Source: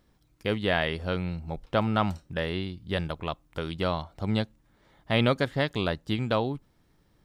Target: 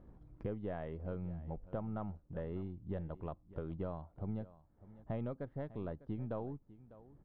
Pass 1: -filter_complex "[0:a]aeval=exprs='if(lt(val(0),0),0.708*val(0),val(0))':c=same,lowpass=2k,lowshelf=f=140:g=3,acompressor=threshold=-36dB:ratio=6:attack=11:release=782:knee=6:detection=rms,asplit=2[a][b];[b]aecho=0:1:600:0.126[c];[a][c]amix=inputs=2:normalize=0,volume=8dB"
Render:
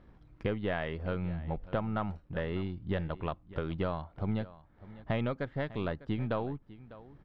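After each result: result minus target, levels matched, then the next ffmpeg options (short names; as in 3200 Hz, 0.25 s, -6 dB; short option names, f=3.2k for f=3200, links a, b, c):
2000 Hz band +10.0 dB; compressor: peak gain reduction -7 dB
-filter_complex "[0:a]aeval=exprs='if(lt(val(0),0),0.708*val(0),val(0))':c=same,lowpass=830,lowshelf=f=140:g=3,acompressor=threshold=-36dB:ratio=6:attack=11:release=782:knee=6:detection=rms,asplit=2[a][b];[b]aecho=0:1:600:0.126[c];[a][c]amix=inputs=2:normalize=0,volume=8dB"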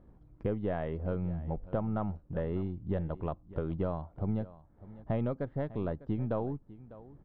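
compressor: peak gain reduction -8 dB
-filter_complex "[0:a]aeval=exprs='if(lt(val(0),0),0.708*val(0),val(0))':c=same,lowpass=830,lowshelf=f=140:g=3,acompressor=threshold=-45.5dB:ratio=6:attack=11:release=782:knee=6:detection=rms,asplit=2[a][b];[b]aecho=0:1:600:0.126[c];[a][c]amix=inputs=2:normalize=0,volume=8dB"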